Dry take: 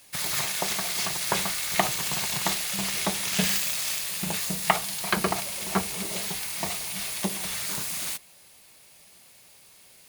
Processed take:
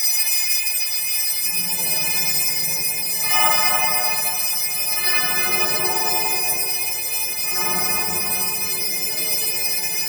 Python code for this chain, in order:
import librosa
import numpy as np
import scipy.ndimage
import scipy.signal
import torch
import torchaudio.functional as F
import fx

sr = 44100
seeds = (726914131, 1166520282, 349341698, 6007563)

y = fx.freq_snap(x, sr, grid_st=3)
y = fx.low_shelf(y, sr, hz=220.0, db=-4.5)
y = fx.echo_feedback(y, sr, ms=84, feedback_pct=37, wet_db=-3.5)
y = fx.paulstretch(y, sr, seeds[0], factor=4.0, window_s=0.1, from_s=3.85)
y = fx.room_shoebox(y, sr, seeds[1], volume_m3=3400.0, walls='mixed', distance_m=4.0)
y = (np.kron(y[::2], np.eye(2)[0]) * 2)[:len(y)]
y = y * 10.0 ** (-8.5 / 20.0)